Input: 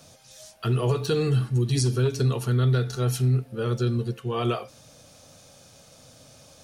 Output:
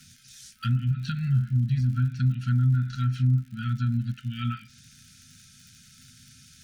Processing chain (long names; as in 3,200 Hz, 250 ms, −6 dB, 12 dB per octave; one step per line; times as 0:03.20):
treble cut that deepens with the level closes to 840 Hz, closed at −17.5 dBFS
surface crackle 93 per second −41 dBFS
brick-wall band-stop 260–1,300 Hz